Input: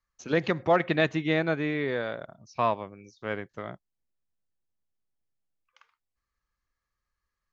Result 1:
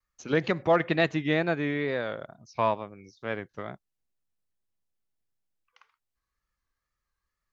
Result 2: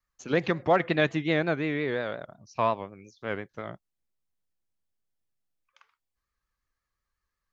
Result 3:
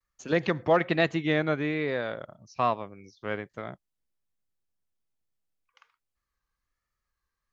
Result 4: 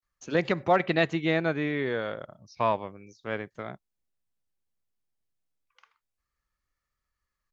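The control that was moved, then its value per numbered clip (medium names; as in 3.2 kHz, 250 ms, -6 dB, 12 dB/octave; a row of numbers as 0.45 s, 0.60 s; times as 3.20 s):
vibrato, rate: 2.2 Hz, 5.6 Hz, 1.2 Hz, 0.33 Hz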